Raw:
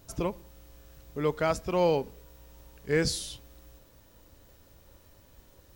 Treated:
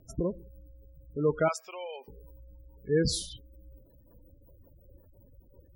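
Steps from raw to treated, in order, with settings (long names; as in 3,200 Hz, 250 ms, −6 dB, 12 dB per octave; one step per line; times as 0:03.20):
0:01.48–0:02.08: Bessel high-pass filter 1,400 Hz, order 2
gate on every frequency bin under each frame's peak −15 dB strong
rotating-speaker cabinet horn 1.2 Hz, later 5.5 Hz, at 0:02.49
level +3 dB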